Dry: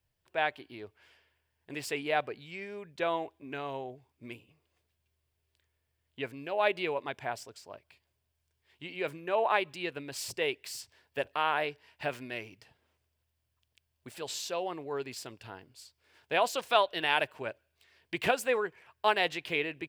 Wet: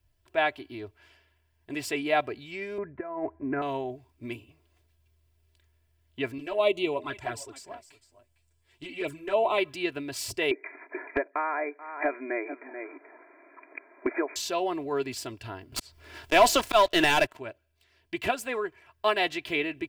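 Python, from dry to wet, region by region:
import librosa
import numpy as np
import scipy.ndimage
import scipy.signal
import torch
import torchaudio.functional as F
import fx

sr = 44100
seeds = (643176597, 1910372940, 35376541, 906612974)

y = fx.chain(x, sr, fx.steep_lowpass(hz=2000.0, slope=48),
    fx.over_compress(threshold_db=-39.0, ratio=-1.0), at=(2.78, 3.62))
y = fx.chain(y, sr, fx.peak_eq(hz=8000.0, db=9.0, octaves=0.45),
    fx.echo_single(ms=455, db=-17.0),
    fx.env_flanger(rest_ms=9.3, full_db=-28.0), at=(6.38, 9.58))
y = fx.chain(y, sr, fx.brickwall_bandpass(low_hz=260.0, high_hz=2500.0),
    fx.echo_single(ms=434, db=-21.0),
    fx.band_squash(depth_pct=100), at=(10.51, 14.36))
y = fx.chain(y, sr, fx.auto_swell(attack_ms=177.0),
    fx.leveller(passes=3),
    fx.band_squash(depth_pct=70), at=(15.72, 17.37))
y = fx.low_shelf(y, sr, hz=170.0, db=9.5)
y = y + 0.6 * np.pad(y, (int(3.0 * sr / 1000.0), 0))[:len(y)]
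y = fx.rider(y, sr, range_db=4, speed_s=2.0)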